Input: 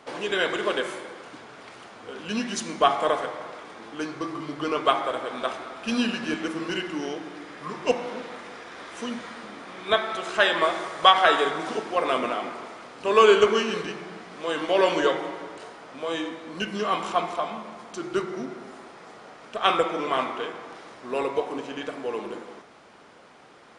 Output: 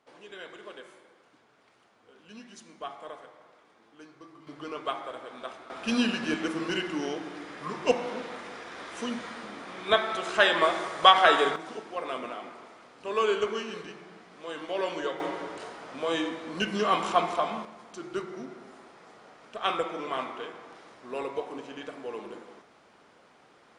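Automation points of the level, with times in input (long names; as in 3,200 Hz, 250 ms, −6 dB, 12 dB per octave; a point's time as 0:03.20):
−19 dB
from 0:04.47 −11 dB
from 0:05.70 −1 dB
from 0:11.56 −10 dB
from 0:15.20 +0.5 dB
from 0:17.65 −7 dB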